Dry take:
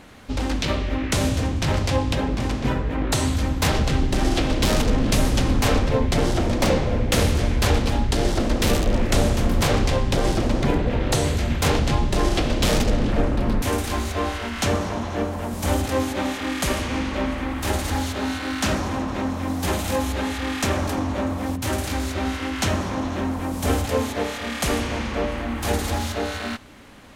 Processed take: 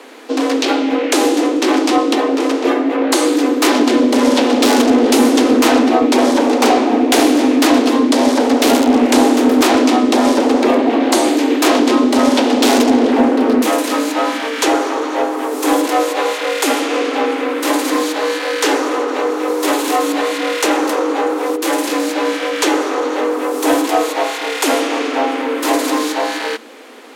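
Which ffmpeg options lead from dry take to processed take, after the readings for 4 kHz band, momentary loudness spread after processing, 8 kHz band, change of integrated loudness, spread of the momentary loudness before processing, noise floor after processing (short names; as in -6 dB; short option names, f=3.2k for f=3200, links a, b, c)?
+8.0 dB, 7 LU, +8.0 dB, +9.0 dB, 6 LU, -22 dBFS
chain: -af "afreqshift=220,asoftclip=type=tanh:threshold=-8dB,volume=8dB"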